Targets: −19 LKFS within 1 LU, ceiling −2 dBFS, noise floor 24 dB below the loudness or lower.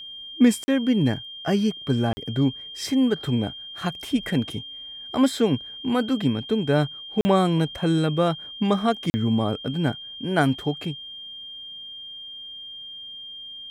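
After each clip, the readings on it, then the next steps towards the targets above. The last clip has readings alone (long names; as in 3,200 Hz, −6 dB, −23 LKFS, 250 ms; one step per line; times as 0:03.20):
number of dropouts 4; longest dropout 40 ms; interfering tone 3,200 Hz; level of the tone −36 dBFS; integrated loudness −24.0 LKFS; sample peak −6.0 dBFS; target loudness −19.0 LKFS
→ repair the gap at 0:00.64/0:02.13/0:07.21/0:09.10, 40 ms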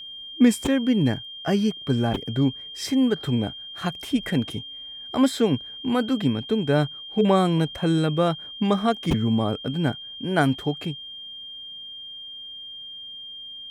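number of dropouts 0; interfering tone 3,200 Hz; level of the tone −36 dBFS
→ notch filter 3,200 Hz, Q 30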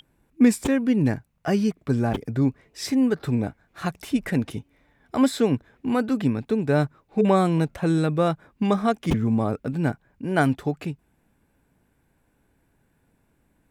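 interfering tone none found; integrated loudness −24.0 LKFS; sample peak −5.5 dBFS; target loudness −19.0 LKFS
→ level +5 dB
brickwall limiter −2 dBFS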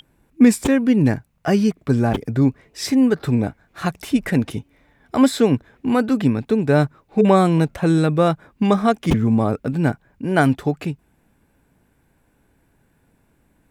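integrated loudness −19.0 LKFS; sample peak −2.0 dBFS; background noise floor −62 dBFS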